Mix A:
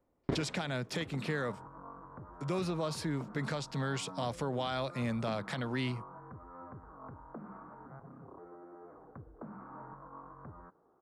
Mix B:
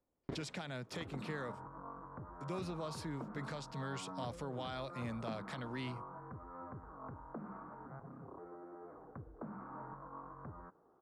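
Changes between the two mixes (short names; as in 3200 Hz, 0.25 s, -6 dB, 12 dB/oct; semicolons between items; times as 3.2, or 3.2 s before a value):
speech -8.0 dB; first sound -10.0 dB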